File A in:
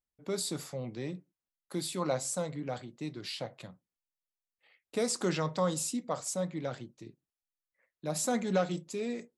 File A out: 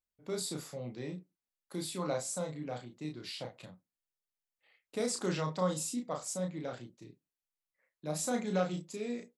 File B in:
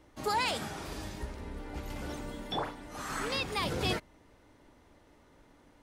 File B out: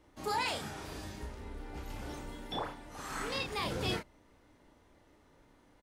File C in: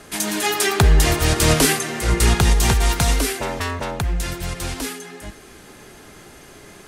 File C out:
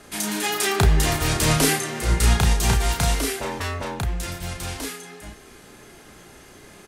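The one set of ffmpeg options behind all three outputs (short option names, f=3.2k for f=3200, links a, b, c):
-filter_complex "[0:a]asplit=2[a][b];[b]adelay=33,volume=-4dB[c];[a][c]amix=inputs=2:normalize=0,volume=-4.5dB"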